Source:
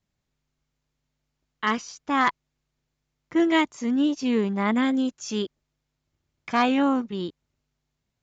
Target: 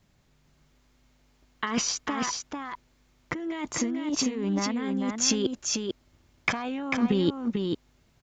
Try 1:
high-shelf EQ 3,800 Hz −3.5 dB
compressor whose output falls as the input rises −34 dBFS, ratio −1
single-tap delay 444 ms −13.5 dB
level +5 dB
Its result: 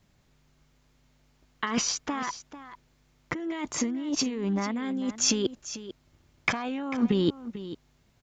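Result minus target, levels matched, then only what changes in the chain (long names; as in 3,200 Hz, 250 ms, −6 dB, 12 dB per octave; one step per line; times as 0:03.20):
echo-to-direct −9 dB
change: single-tap delay 444 ms −4.5 dB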